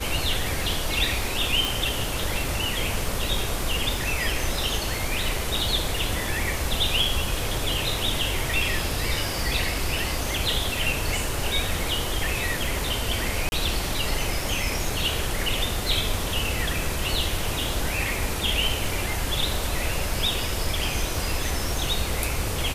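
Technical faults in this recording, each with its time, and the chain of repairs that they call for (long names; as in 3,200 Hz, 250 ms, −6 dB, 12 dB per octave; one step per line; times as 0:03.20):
surface crackle 21 per second −31 dBFS
0:01.65: click
0:13.49–0:13.52: drop-out 31 ms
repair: click removal
repair the gap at 0:13.49, 31 ms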